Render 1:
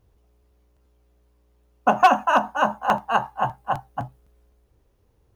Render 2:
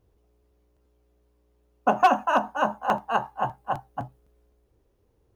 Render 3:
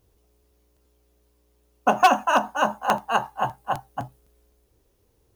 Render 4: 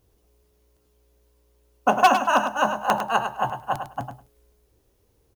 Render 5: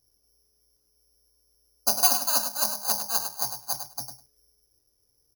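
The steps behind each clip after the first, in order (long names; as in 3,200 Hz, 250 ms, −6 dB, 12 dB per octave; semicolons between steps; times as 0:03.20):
parametric band 380 Hz +5.5 dB 1.4 octaves; level −5 dB
high-shelf EQ 3,000 Hz +12 dB; level +1 dB
repeating echo 102 ms, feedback 15%, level −8 dB
bad sample-rate conversion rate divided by 8×, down filtered, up zero stuff; level −13.5 dB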